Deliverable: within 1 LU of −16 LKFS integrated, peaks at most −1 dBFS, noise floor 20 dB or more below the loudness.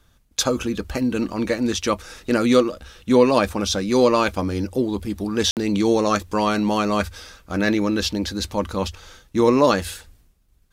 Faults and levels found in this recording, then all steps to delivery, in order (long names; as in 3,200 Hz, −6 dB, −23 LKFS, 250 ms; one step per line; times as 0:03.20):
number of dropouts 1; longest dropout 58 ms; integrated loudness −21.0 LKFS; sample peak −3.0 dBFS; target loudness −16.0 LKFS
→ repair the gap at 0:05.51, 58 ms
level +5 dB
brickwall limiter −1 dBFS